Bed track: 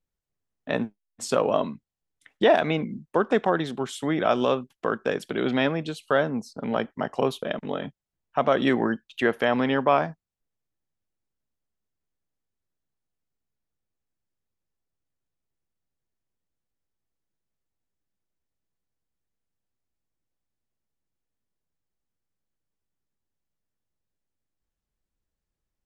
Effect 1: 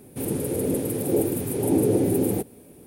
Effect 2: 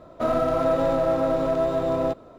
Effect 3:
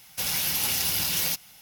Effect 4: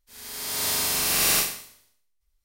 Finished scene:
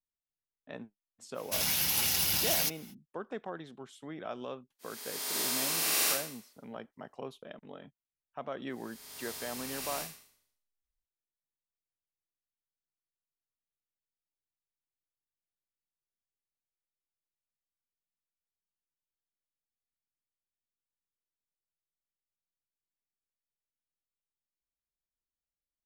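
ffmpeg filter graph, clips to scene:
-filter_complex "[4:a]asplit=2[a][b];[0:a]volume=-18dB[c];[a]highpass=f=240:w=0.5412,highpass=f=240:w=1.3066[d];[3:a]atrim=end=1.61,asetpts=PTS-STARTPTS,volume=-3dB,afade=t=in:d=0.05,afade=t=out:st=1.56:d=0.05,adelay=1340[e];[d]atrim=end=2.44,asetpts=PTS-STARTPTS,volume=-7dB,afade=t=in:d=0.004:c=hsin,afade=t=out:st=2.436:d=0.004:c=hsin,adelay=4720[f];[b]atrim=end=2.44,asetpts=PTS-STARTPTS,volume=-18dB,afade=t=in:d=0.004:c=hsin,afade=t=out:st=2.436:d=0.004:c=hsin,adelay=8620[g];[c][e][f][g]amix=inputs=4:normalize=0"

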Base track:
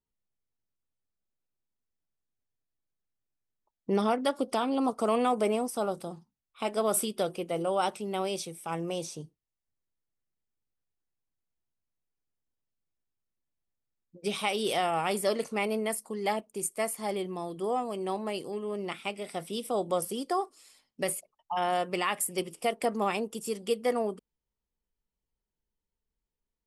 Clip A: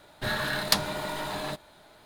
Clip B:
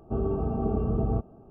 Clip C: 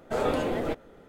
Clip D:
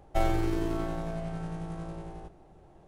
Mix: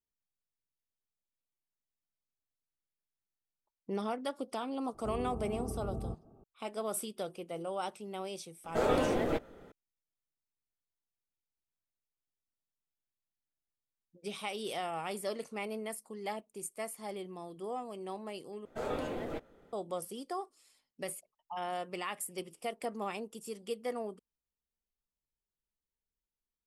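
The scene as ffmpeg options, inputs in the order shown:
-filter_complex "[3:a]asplit=2[a][b];[0:a]volume=-9dB[c];[2:a]acompressor=mode=upward:threshold=-39dB:ratio=2.5:attack=3.2:release=140:knee=2.83:detection=peak[d];[c]asplit=2[e][f];[e]atrim=end=18.654[g];[b]atrim=end=1.08,asetpts=PTS-STARTPTS,volume=-9.5dB[h];[f]atrim=start=19.726[i];[d]atrim=end=1.5,asetpts=PTS-STARTPTS,volume=-12.5dB,afade=t=in:d=0.004:c=hsin,afade=t=out:st=1.496:d=0.004:c=hsin,adelay=4940[j];[a]atrim=end=1.08,asetpts=PTS-STARTPTS,volume=-2dB,afade=t=in:d=0.004:c=hsin,afade=t=out:st=1.076:d=0.004:c=hsin,adelay=8640[k];[g][h]acrossfade=d=0.004:c1=hsin:c2=hsin[l];[l][i]acrossfade=d=0.004:c1=hsin:c2=hsin[m];[m][j][k]amix=inputs=3:normalize=0"

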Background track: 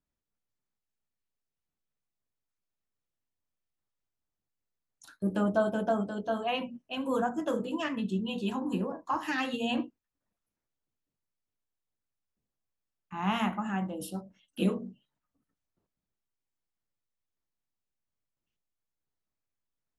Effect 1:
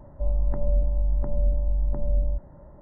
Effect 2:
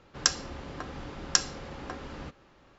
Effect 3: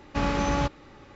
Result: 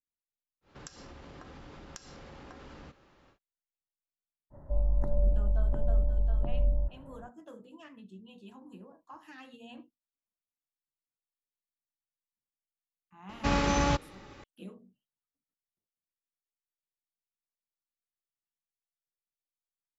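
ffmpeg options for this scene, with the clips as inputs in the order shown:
-filter_complex "[0:a]volume=-18.5dB[a];[2:a]acompressor=threshold=-41dB:ratio=6:attack=3.2:release=140:knee=1:detection=peak[b];[3:a]highshelf=f=3.8k:g=6[c];[b]atrim=end=2.78,asetpts=PTS-STARTPTS,volume=-3.5dB,afade=t=in:d=0.1,afade=t=out:st=2.68:d=0.1,adelay=610[d];[1:a]atrim=end=2.81,asetpts=PTS-STARTPTS,volume=-3.5dB,afade=t=in:d=0.05,afade=t=out:st=2.76:d=0.05,adelay=4500[e];[c]atrim=end=1.15,asetpts=PTS-STARTPTS,volume=-1.5dB,afade=t=in:d=0.004:c=hsin,afade=t=out:st=1.146:d=0.004:c=hsin,adelay=13290[f];[a][d][e][f]amix=inputs=4:normalize=0"

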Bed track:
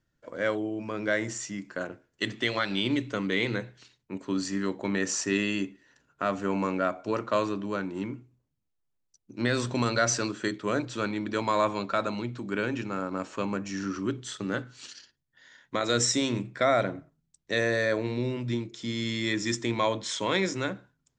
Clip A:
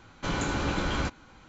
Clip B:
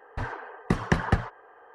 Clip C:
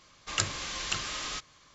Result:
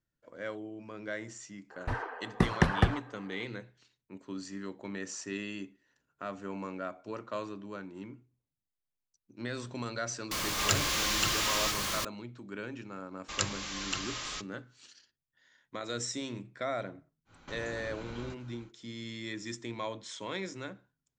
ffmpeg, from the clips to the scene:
-filter_complex "[3:a]asplit=2[a][b];[0:a]volume=-11dB[c];[a]aeval=exprs='val(0)+0.5*0.0501*sgn(val(0))':c=same[d];[b]agate=range=-33dB:threshold=-46dB:ratio=3:release=100:detection=peak[e];[1:a]acompressor=threshold=-37dB:ratio=6:attack=3.2:release=140:knee=1:detection=peak[f];[2:a]atrim=end=1.74,asetpts=PTS-STARTPTS,volume=-1.5dB,afade=t=in:d=0.004:c=hsin,afade=t=out:st=1.736:d=0.004:c=hsin,adelay=1700[g];[d]atrim=end=1.74,asetpts=PTS-STARTPTS,volume=-2dB,afade=t=in:d=0.004:c=hsin,afade=t=out:st=1.736:d=0.004:c=hsin,adelay=10310[h];[e]atrim=end=1.74,asetpts=PTS-STARTPTS,volume=-3dB,afade=t=in:d=0.004:c=hsin,afade=t=out:st=1.736:d=0.004:c=hsin,adelay=13010[i];[f]atrim=end=1.48,asetpts=PTS-STARTPTS,volume=-5dB,afade=t=in:d=0.1,afade=t=out:st=1.38:d=0.1,adelay=17250[j];[c][g][h][i][j]amix=inputs=5:normalize=0"

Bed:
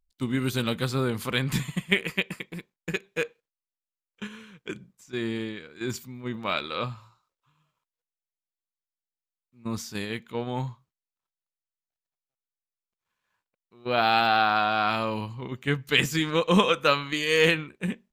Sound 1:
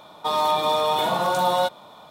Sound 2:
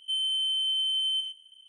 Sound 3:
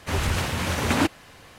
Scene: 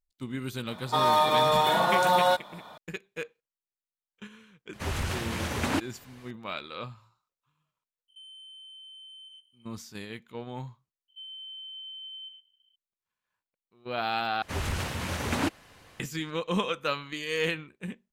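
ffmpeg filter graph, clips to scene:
-filter_complex "[3:a]asplit=2[a][b];[2:a]asplit=2[c][d];[0:a]volume=-8dB[e];[1:a]equalizer=f=1.7k:t=o:w=0.52:g=8[f];[c]acompressor=threshold=-34dB:ratio=6:attack=3.2:release=140:knee=1:detection=peak[g];[d]lowpass=3.7k[h];[e]asplit=2[i][j];[i]atrim=end=14.424[k];[b]atrim=end=1.58,asetpts=PTS-STARTPTS,volume=-6.5dB[l];[j]atrim=start=15.996[m];[f]atrim=end=2.1,asetpts=PTS-STARTPTS,volume=-2dB,afade=t=in:d=0.004:c=hsin,afade=t=out:st=2.096:d=0.004:c=hsin,adelay=680[n];[a]atrim=end=1.58,asetpts=PTS-STARTPTS,volume=-6.5dB,afade=t=in:d=0.004:c=hsin,afade=t=out:st=1.576:d=0.004:c=hsin,adelay=208593S[o];[g]atrim=end=1.68,asetpts=PTS-STARTPTS,volume=-13dB,afade=t=in:d=0.004:c=hsin,afade=t=out:st=1.676:d=0.004:c=hsin,adelay=8080[p];[h]atrim=end=1.68,asetpts=PTS-STARTPTS,volume=-13dB,afade=t=in:d=0.004:c=hsin,afade=t=out:st=1.676:d=0.004:c=hsin,adelay=11080[q];[k][l]acrossfade=d=0.004:c1=hsin:c2=hsin[r];[r][m]acrossfade=d=0.004:c1=hsin:c2=hsin[s];[s][n][o][p][q]amix=inputs=5:normalize=0"

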